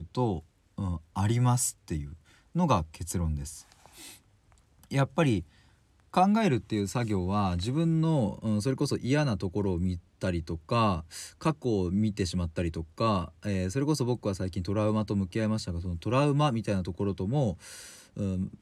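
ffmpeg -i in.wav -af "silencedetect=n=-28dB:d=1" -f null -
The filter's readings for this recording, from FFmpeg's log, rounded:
silence_start: 3.42
silence_end: 4.93 | silence_duration: 1.50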